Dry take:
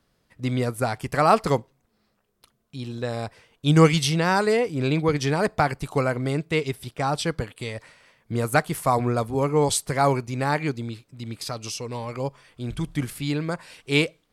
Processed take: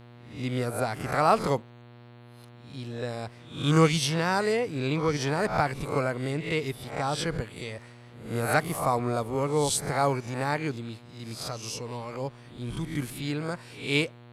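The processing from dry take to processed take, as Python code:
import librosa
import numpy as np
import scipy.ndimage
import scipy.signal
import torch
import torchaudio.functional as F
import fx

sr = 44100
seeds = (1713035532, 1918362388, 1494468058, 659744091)

y = fx.spec_swells(x, sr, rise_s=0.48)
y = fx.dmg_buzz(y, sr, base_hz=120.0, harmonics=37, level_db=-44.0, tilt_db=-6, odd_only=False)
y = y * 10.0 ** (-5.5 / 20.0)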